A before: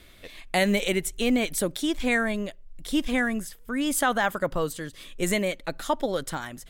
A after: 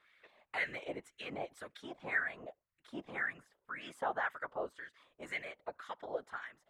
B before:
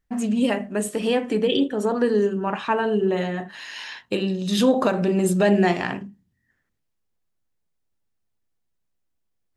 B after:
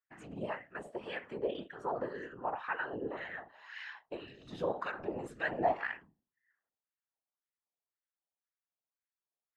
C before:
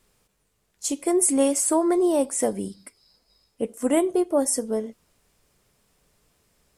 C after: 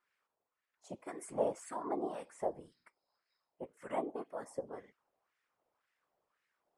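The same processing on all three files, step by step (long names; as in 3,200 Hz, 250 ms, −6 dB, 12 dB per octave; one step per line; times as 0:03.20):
LFO wah 1.9 Hz 690–1,900 Hz, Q 2.5
random phases in short frames
level −5.5 dB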